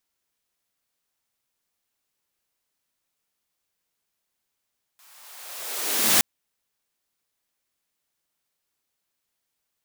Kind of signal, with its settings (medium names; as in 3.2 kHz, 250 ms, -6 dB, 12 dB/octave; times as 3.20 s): swept filtered noise white, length 1.22 s highpass, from 1 kHz, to 110 Hz, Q 1.5, linear, gain ramp +39 dB